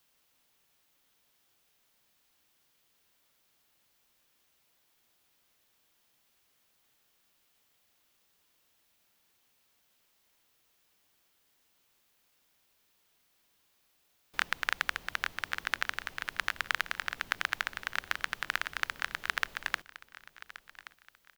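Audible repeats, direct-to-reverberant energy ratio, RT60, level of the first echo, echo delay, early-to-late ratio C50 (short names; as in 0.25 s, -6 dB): 2, none, none, -17.0 dB, 1.126 s, none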